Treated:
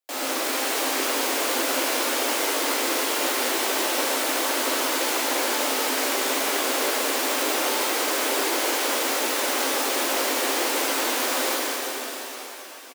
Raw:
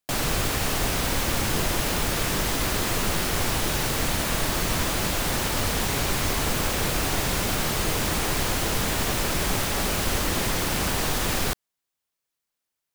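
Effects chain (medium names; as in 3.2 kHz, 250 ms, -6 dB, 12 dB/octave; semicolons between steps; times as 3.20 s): steep high-pass 250 Hz 96 dB/octave; peaking EQ 550 Hz +4 dB 0.36 oct; doubling 15 ms -11.5 dB; pitch-shifted reverb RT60 3.8 s, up +7 st, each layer -8 dB, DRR -7 dB; trim -6 dB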